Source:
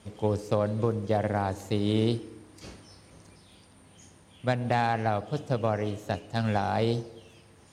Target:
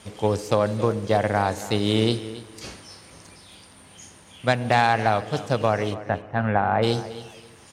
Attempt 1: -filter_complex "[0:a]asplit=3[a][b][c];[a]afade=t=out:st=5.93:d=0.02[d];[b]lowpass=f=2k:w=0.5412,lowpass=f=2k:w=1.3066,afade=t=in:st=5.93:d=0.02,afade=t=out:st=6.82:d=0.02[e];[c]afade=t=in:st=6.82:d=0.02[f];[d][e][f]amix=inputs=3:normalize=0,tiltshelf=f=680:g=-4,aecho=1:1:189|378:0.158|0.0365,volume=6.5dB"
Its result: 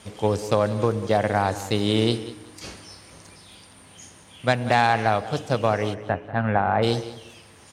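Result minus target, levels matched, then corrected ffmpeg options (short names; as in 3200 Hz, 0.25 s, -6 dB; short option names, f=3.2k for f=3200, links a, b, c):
echo 86 ms early
-filter_complex "[0:a]asplit=3[a][b][c];[a]afade=t=out:st=5.93:d=0.02[d];[b]lowpass=f=2k:w=0.5412,lowpass=f=2k:w=1.3066,afade=t=in:st=5.93:d=0.02,afade=t=out:st=6.82:d=0.02[e];[c]afade=t=in:st=6.82:d=0.02[f];[d][e][f]amix=inputs=3:normalize=0,tiltshelf=f=680:g=-4,aecho=1:1:275|550:0.158|0.0365,volume=6.5dB"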